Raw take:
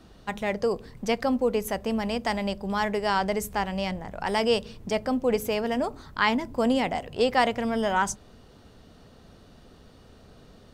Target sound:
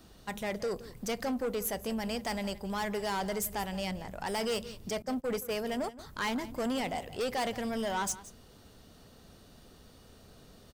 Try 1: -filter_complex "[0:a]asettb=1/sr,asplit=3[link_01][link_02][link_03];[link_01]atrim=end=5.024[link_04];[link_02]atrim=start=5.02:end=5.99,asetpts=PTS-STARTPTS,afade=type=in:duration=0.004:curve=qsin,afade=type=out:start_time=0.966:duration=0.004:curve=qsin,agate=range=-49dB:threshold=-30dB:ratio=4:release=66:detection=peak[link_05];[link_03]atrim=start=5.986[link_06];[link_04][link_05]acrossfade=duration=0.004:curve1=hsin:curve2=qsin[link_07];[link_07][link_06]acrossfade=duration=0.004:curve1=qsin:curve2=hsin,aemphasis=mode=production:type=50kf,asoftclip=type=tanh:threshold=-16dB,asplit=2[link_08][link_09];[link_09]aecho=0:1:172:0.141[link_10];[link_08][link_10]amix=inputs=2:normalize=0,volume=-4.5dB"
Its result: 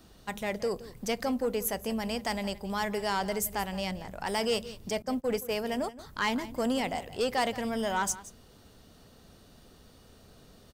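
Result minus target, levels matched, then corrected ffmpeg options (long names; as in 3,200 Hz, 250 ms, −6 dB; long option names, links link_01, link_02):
soft clipping: distortion −7 dB
-filter_complex "[0:a]asettb=1/sr,asplit=3[link_01][link_02][link_03];[link_01]atrim=end=5.024[link_04];[link_02]atrim=start=5.02:end=5.99,asetpts=PTS-STARTPTS,afade=type=in:duration=0.004:curve=qsin,afade=type=out:start_time=0.966:duration=0.004:curve=qsin,agate=range=-49dB:threshold=-30dB:ratio=4:release=66:detection=peak[link_05];[link_03]atrim=start=5.986[link_06];[link_04][link_05]acrossfade=duration=0.004:curve1=hsin:curve2=qsin[link_07];[link_07][link_06]acrossfade=duration=0.004:curve1=qsin:curve2=hsin,aemphasis=mode=production:type=50kf,asoftclip=type=tanh:threshold=-23.5dB,asplit=2[link_08][link_09];[link_09]aecho=0:1:172:0.141[link_10];[link_08][link_10]amix=inputs=2:normalize=0,volume=-4.5dB"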